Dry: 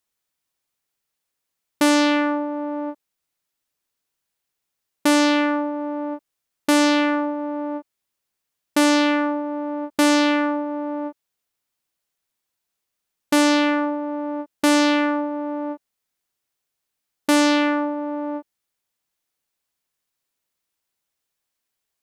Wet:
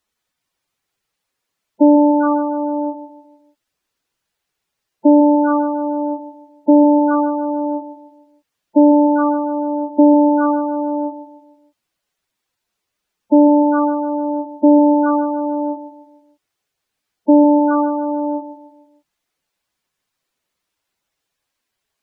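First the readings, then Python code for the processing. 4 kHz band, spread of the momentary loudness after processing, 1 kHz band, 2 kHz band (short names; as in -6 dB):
under -40 dB, 12 LU, +6.0 dB, -9.5 dB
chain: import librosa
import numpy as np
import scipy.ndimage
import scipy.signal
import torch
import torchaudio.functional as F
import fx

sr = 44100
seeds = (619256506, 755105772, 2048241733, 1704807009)

y = fx.spec_gate(x, sr, threshold_db=-10, keep='strong')
y = fx.high_shelf(y, sr, hz=7500.0, db=-10.5)
y = fx.echo_feedback(y, sr, ms=151, feedback_pct=42, wet_db=-11.5)
y = F.gain(torch.from_numpy(y), 8.5).numpy()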